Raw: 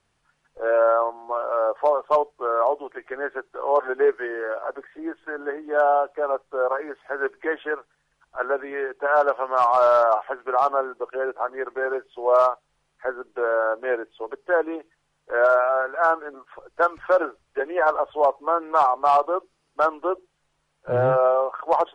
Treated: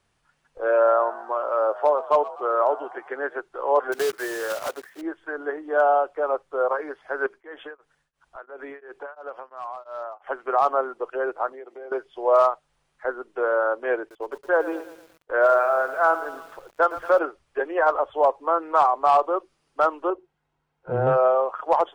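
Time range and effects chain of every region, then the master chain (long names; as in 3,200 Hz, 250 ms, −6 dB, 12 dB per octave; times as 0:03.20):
0:00.70–0:03.39: high-pass filter 110 Hz + echo with shifted repeats 124 ms, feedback 50%, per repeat +61 Hz, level −17 dB
0:03.92–0:05.03: one scale factor per block 3 bits + high-pass filter 170 Hz 6 dB per octave + downward compressor 4 to 1, threshold −20 dBFS
0:07.26–0:10.27: downward compressor 4 to 1, threshold −32 dBFS + tremolo along a rectified sine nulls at 2.9 Hz
0:11.52–0:11.92: high-pass filter 220 Hz + flat-topped bell 1,300 Hz −11 dB 1.1 octaves + downward compressor 3 to 1, threshold −40 dBFS
0:13.99–0:17.19: noise gate −50 dBFS, range −16 dB + feedback echo at a low word length 114 ms, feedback 55%, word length 7 bits, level −13.5 dB
0:20.10–0:21.07: low-pass filter 1,300 Hz 6 dB per octave + notch comb filter 590 Hz
whole clip: no processing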